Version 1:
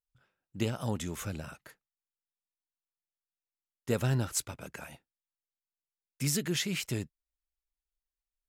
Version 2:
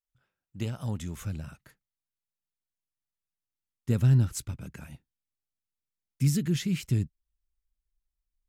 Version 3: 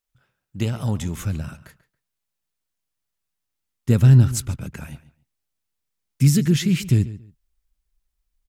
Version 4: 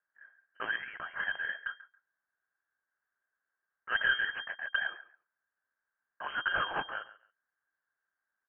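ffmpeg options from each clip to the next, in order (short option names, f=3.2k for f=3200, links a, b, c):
-af "asubboost=boost=7:cutoff=230,volume=-4.5dB"
-filter_complex "[0:a]asplit=2[a][b];[b]adelay=139,lowpass=f=4.2k:p=1,volume=-16dB,asplit=2[c][d];[d]adelay=139,lowpass=f=4.2k:p=1,volume=0.21[e];[a][c][e]amix=inputs=3:normalize=0,volume=9dB"
-af "highpass=f=1.6k:t=q:w=14,aeval=exprs='(tanh(7.08*val(0)+0.5)-tanh(0.5))/7.08':c=same,lowpass=f=2.7k:t=q:w=0.5098,lowpass=f=2.7k:t=q:w=0.6013,lowpass=f=2.7k:t=q:w=0.9,lowpass=f=2.7k:t=q:w=2.563,afreqshift=-3200,volume=-2dB"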